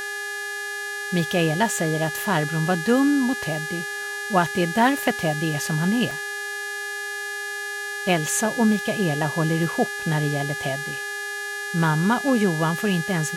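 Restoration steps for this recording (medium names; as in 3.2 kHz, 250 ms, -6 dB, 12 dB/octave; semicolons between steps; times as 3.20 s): de-hum 406.8 Hz, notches 30; band-stop 1.7 kHz, Q 30; interpolate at 6.11 s, 1.1 ms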